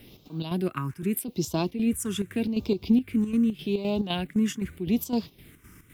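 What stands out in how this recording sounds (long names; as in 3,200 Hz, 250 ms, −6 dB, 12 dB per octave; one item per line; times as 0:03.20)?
a quantiser's noise floor 12 bits, dither triangular
phaser sweep stages 4, 0.83 Hz, lowest notch 670–1,800 Hz
chopped level 3.9 Hz, depth 60%, duty 65%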